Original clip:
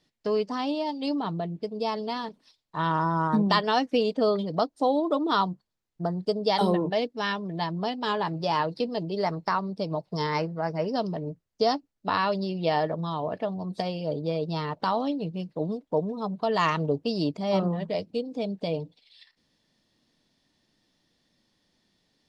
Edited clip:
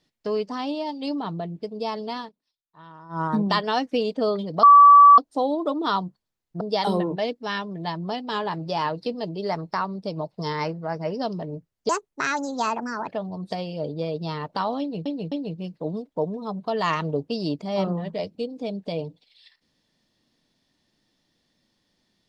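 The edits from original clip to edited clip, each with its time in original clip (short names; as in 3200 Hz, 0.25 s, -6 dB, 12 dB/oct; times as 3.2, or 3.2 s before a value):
2.2–3.21 dip -20 dB, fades 0.12 s
4.63 add tone 1150 Hz -7 dBFS 0.55 s
6.06–6.35 cut
11.63–13.35 speed 145%
15.07–15.33 loop, 3 plays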